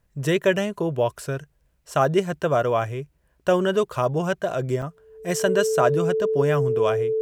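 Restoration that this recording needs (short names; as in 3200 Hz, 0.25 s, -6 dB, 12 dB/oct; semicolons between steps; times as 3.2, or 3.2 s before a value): notch 440 Hz, Q 30; interpolate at 4.82, 3.5 ms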